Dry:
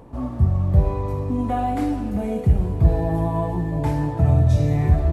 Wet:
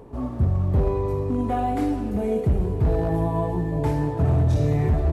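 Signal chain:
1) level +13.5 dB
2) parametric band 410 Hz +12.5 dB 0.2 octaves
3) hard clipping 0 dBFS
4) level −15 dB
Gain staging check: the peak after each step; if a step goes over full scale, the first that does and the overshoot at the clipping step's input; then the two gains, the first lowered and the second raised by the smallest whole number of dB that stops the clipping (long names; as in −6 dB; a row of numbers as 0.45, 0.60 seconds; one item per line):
+10.0, +10.0, 0.0, −15.0 dBFS
step 1, 10.0 dB
step 1 +3.5 dB, step 4 −5 dB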